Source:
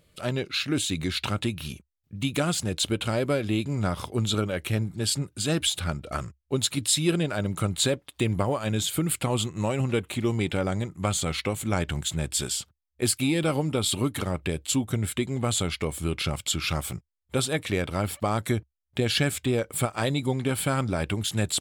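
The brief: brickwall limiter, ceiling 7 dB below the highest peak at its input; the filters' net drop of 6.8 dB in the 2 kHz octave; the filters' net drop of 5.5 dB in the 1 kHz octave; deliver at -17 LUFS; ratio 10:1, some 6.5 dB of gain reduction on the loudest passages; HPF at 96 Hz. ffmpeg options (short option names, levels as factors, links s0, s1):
-af "highpass=96,equalizer=f=1000:t=o:g=-5.5,equalizer=f=2000:t=o:g=-7.5,acompressor=threshold=0.0447:ratio=10,volume=7.08,alimiter=limit=0.531:level=0:latency=1"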